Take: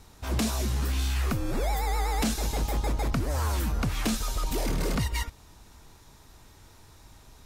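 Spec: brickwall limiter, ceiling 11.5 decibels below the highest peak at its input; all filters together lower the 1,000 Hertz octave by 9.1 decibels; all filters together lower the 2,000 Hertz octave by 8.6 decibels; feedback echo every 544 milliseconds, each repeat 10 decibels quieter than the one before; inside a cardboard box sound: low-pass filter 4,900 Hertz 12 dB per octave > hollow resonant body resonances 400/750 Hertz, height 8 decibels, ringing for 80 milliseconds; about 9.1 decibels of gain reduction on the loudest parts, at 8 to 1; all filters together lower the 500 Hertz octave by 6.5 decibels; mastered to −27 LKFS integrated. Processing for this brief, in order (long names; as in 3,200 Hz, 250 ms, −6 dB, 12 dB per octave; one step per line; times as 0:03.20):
parametric band 500 Hz −6 dB
parametric band 1,000 Hz −8 dB
parametric band 2,000 Hz −8 dB
downward compressor 8 to 1, threshold −34 dBFS
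brickwall limiter −38 dBFS
low-pass filter 4,900 Hz 12 dB per octave
repeating echo 544 ms, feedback 32%, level −10 dB
hollow resonant body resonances 400/750 Hz, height 8 dB, ringing for 80 ms
level +21 dB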